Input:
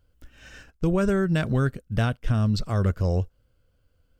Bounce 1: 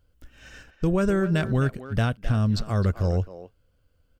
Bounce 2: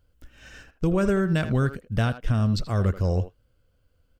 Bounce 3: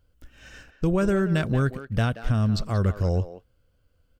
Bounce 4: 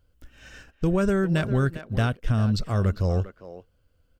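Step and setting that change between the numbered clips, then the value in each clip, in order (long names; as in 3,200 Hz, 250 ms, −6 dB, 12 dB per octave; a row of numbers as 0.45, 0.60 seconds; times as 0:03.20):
far-end echo of a speakerphone, delay time: 260, 80, 180, 400 milliseconds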